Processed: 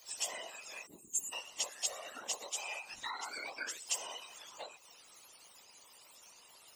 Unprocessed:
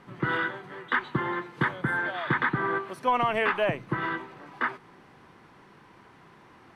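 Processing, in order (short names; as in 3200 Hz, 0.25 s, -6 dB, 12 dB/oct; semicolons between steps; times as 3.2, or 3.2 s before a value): spectrum mirrored in octaves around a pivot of 990 Hz; spectral gain 0.86–1.33, 360–6500 Hz -29 dB; compressor 4:1, threshold -36 dBFS, peak gain reduction 12 dB; pre-emphasis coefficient 0.97; whisperiser; gain +9 dB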